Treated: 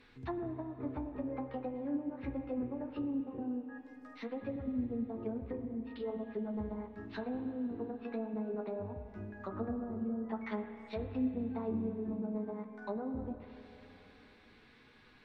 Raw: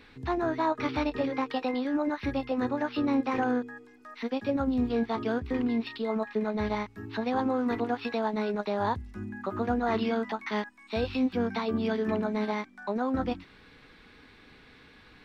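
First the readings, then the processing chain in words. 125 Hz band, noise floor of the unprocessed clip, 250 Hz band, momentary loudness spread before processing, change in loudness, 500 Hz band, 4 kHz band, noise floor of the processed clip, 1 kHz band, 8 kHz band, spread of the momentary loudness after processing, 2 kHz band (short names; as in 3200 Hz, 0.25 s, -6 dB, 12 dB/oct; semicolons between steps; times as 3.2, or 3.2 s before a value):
-6.5 dB, -55 dBFS, -8.0 dB, 7 LU, -9.5 dB, -10.0 dB, under -15 dB, -61 dBFS, -16.0 dB, n/a, 8 LU, -16.5 dB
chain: treble ducked by the level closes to 310 Hz, closed at -24 dBFS; spring tank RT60 3.5 s, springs 31/51 ms, chirp 70 ms, DRR 7.5 dB; flange 0.2 Hz, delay 7.9 ms, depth 8.2 ms, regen -43%; gain -4 dB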